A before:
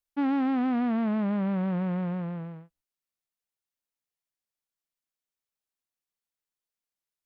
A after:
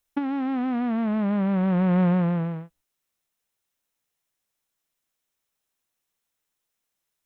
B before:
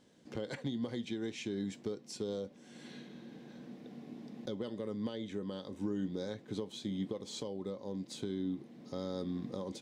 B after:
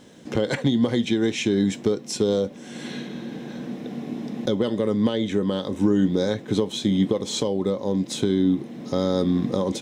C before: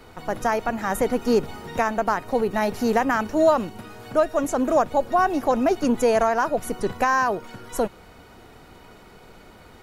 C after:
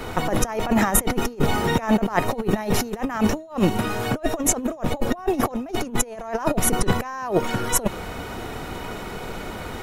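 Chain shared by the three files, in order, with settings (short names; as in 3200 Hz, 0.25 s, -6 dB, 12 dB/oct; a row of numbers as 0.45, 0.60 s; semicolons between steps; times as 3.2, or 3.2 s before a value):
notch 4600 Hz, Q 10; dynamic EQ 1500 Hz, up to -5 dB, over -43 dBFS, Q 6.4; negative-ratio compressor -29 dBFS, ratio -0.5; match loudness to -24 LUFS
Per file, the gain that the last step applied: +7.5, +16.5, +8.0 dB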